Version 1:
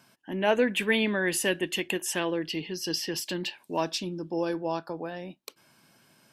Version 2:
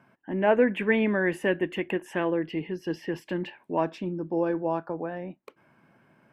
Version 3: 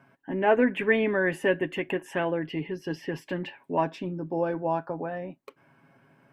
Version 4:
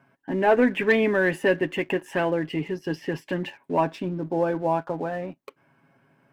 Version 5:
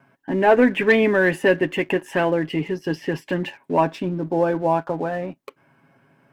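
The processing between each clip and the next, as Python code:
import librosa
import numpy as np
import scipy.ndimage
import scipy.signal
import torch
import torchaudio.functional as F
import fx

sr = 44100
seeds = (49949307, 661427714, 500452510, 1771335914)

y1 = fx.curve_eq(x, sr, hz=(570.0, 2100.0, 4400.0), db=(0, -3, -24))
y1 = F.gain(torch.from_numpy(y1), 3.0).numpy()
y2 = y1 + 0.48 * np.pad(y1, (int(7.3 * sr / 1000.0), 0))[:len(y1)]
y3 = fx.leveller(y2, sr, passes=1)
y4 = fx.vibrato(y3, sr, rate_hz=0.5, depth_cents=5.5)
y4 = F.gain(torch.from_numpy(y4), 4.0).numpy()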